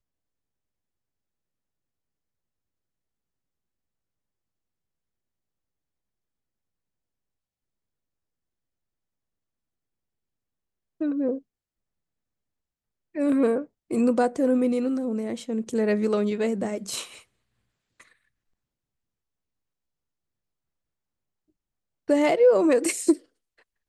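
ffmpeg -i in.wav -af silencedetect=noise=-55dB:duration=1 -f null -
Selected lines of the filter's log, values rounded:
silence_start: 0.00
silence_end: 11.00 | silence_duration: 11.00
silence_start: 11.42
silence_end: 13.14 | silence_duration: 1.73
silence_start: 18.13
silence_end: 22.08 | silence_duration: 3.95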